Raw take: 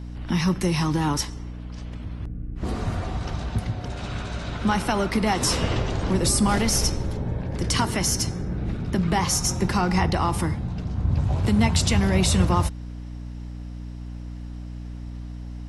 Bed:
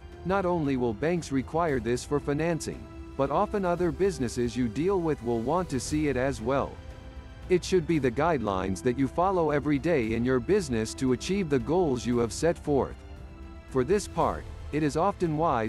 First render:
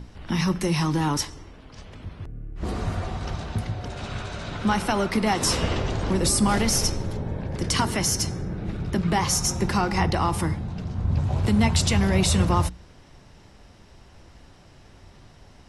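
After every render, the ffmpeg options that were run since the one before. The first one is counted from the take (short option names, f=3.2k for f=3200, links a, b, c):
-af "bandreject=f=60:t=h:w=6,bandreject=f=120:t=h:w=6,bandreject=f=180:t=h:w=6,bandreject=f=240:t=h:w=6,bandreject=f=300:t=h:w=6"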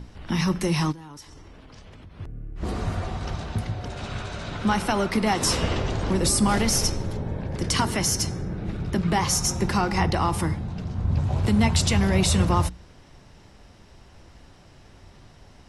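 -filter_complex "[0:a]asplit=3[a][b][c];[a]afade=t=out:st=0.91:d=0.02[d];[b]acompressor=threshold=-41dB:ratio=6:attack=3.2:release=140:knee=1:detection=peak,afade=t=in:st=0.91:d=0.02,afade=t=out:st=2.18:d=0.02[e];[c]afade=t=in:st=2.18:d=0.02[f];[d][e][f]amix=inputs=3:normalize=0"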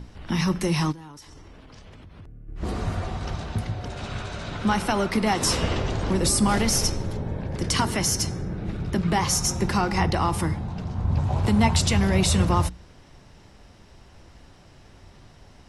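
-filter_complex "[0:a]asplit=3[a][b][c];[a]afade=t=out:st=1.1:d=0.02[d];[b]acompressor=threshold=-40dB:ratio=6:attack=3.2:release=140:knee=1:detection=peak,afade=t=in:st=1.1:d=0.02,afade=t=out:st=2.47:d=0.02[e];[c]afade=t=in:st=2.47:d=0.02[f];[d][e][f]amix=inputs=3:normalize=0,asettb=1/sr,asplit=3[g][h][i];[g]atrim=end=10.554[j];[h]atrim=start=10.55:end=11.79,asetpts=PTS-STARTPTS,afade=t=in:d=0.004:c=qsin,afade=t=out:st=1.236:d=0.004:c=qsin,equalizer=f=890:w=1.8:g=5.5[k];[i]atrim=start=11.786[l];[j][k]acrossfade=d=0.004:c1=hsin:c2=qsin[m];[m][l]acrossfade=d=0.004:c1=qsin:c2=hsin"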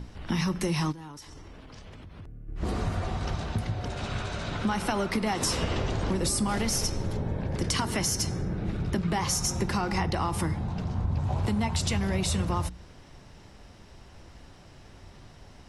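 -af "acompressor=threshold=-24dB:ratio=6"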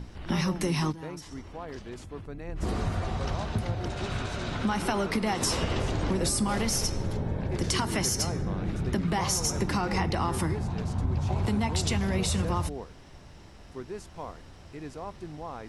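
-filter_complex "[1:a]volume=-14dB[a];[0:a][a]amix=inputs=2:normalize=0"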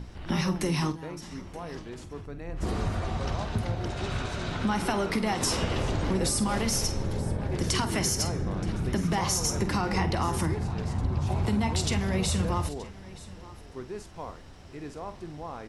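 -filter_complex "[0:a]asplit=2[a][b];[b]adelay=48,volume=-12dB[c];[a][c]amix=inputs=2:normalize=0,aecho=1:1:925:0.112"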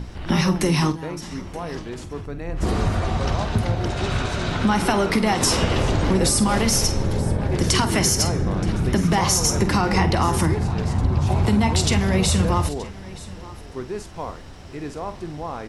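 -af "volume=8dB"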